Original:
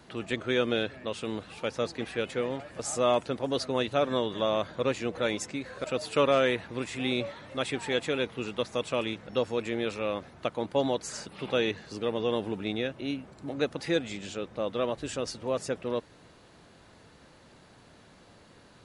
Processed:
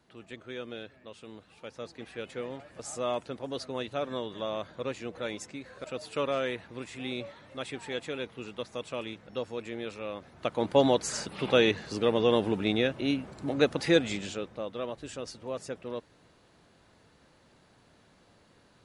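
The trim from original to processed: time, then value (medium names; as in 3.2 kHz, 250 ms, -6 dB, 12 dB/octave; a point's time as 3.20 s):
1.48 s -13 dB
2.40 s -6.5 dB
10.18 s -6.5 dB
10.68 s +4.5 dB
14.14 s +4.5 dB
14.69 s -6 dB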